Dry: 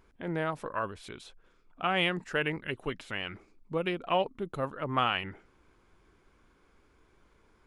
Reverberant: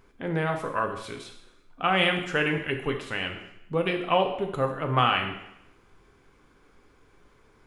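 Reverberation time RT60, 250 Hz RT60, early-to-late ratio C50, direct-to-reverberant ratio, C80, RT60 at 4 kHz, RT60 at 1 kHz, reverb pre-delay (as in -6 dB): 0.80 s, 0.80 s, 7.5 dB, 3.0 dB, 10.0 dB, 0.80 s, 0.80 s, 3 ms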